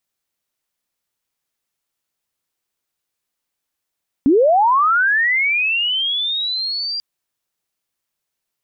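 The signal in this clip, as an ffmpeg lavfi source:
-f lavfi -i "aevalsrc='pow(10,(-9-12*t/2.74)/20)*sin(2*PI*(250*t+4550*t*t/(2*2.74)))':d=2.74:s=44100"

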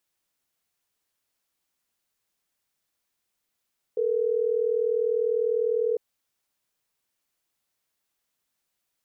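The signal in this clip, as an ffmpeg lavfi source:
-f lavfi -i "aevalsrc='0.0596*(sin(2*PI*440*t)+sin(2*PI*480*t))*clip(min(mod(t,6),2-mod(t,6))/0.005,0,1)':d=3.12:s=44100"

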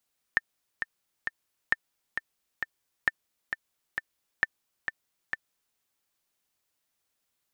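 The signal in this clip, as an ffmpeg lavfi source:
-f lavfi -i "aevalsrc='pow(10,(-9-7.5*gte(mod(t,3*60/133),60/133))/20)*sin(2*PI*1790*mod(t,60/133))*exp(-6.91*mod(t,60/133)/0.03)':d=5.41:s=44100"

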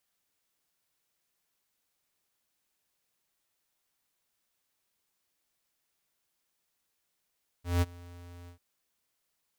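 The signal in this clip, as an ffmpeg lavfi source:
-f lavfi -i "aevalsrc='0.0631*(2*lt(mod(87.4*t,1),0.5)-1)':d=0.943:s=44100,afade=t=in:d=0.177,afade=t=out:st=0.177:d=0.031:silence=0.0631,afade=t=out:st=0.84:d=0.103"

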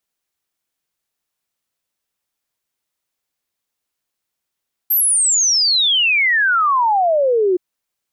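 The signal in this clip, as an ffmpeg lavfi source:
-f lavfi -i "aevalsrc='0.251*clip(min(t,2.67-t)/0.01,0,1)*sin(2*PI*13000*2.67/log(350/13000)*(exp(log(350/13000)*t/2.67)-1))':d=2.67:s=44100"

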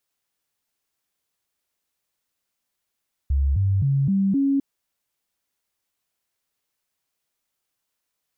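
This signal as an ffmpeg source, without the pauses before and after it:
-f lavfi -i "aevalsrc='0.141*clip(min(mod(t,0.26),0.26-mod(t,0.26))/0.005,0,1)*sin(2*PI*69*pow(2,floor(t/0.26)/2)*mod(t,0.26))':d=1.3:s=44100"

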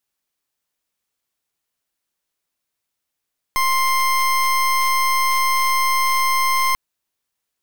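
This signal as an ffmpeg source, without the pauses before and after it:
-f lavfi -i "aevalsrc='0.133*(2*lt(mod(1050*t,1),0.28)-1)':d=3.19:s=44100"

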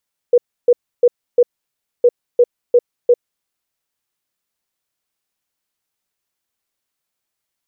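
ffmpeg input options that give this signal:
-f lavfi -i "aevalsrc='0.501*sin(2*PI*485*t)*clip(min(mod(mod(t,1.71),0.35),0.05-mod(mod(t,1.71),0.35))/0.005,0,1)*lt(mod(t,1.71),1.4)':d=3.42:s=44100"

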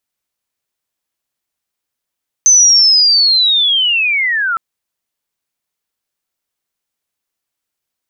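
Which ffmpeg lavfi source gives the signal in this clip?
-f lavfi -i "aevalsrc='pow(10,(-4-9*t/2.11)/20)*sin(2*PI*(6200*t-4900*t*t/(2*2.11)))':d=2.11:s=44100"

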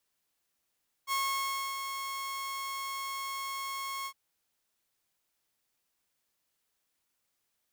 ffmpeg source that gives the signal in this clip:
-f lavfi -i "aevalsrc='0.0531*(2*mod(1090*t,1)-1)':d=3.059:s=44100,afade=t=in:d=0.051,afade=t=out:st=0.051:d=0.635:silence=0.447,afade=t=out:st=2.99:d=0.069"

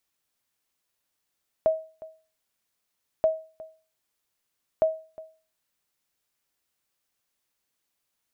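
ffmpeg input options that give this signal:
-f lavfi -i "aevalsrc='0.2*(sin(2*PI*638*mod(t,1.58))*exp(-6.91*mod(t,1.58)/0.37)+0.1*sin(2*PI*638*max(mod(t,1.58)-0.36,0))*exp(-6.91*max(mod(t,1.58)-0.36,0)/0.37))':d=4.74:s=44100"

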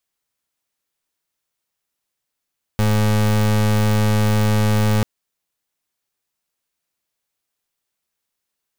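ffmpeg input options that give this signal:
-f lavfi -i "aevalsrc='0.158*(2*lt(mod(106*t,1),0.31)-1)':d=2.24:s=44100"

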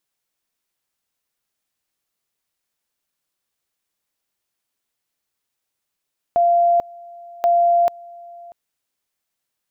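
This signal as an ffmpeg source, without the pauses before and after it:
-f lavfi -i "aevalsrc='pow(10,(-12-24*gte(mod(t,1.08),0.44))/20)*sin(2*PI*691*t)':d=2.16:s=44100"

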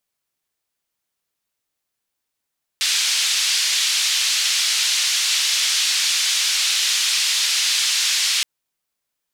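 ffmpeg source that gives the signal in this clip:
-f lavfi -i "anoisesrc=c=white:d=5.62:r=44100:seed=1,highpass=f=3200,lowpass=f=4800,volume=-4.3dB"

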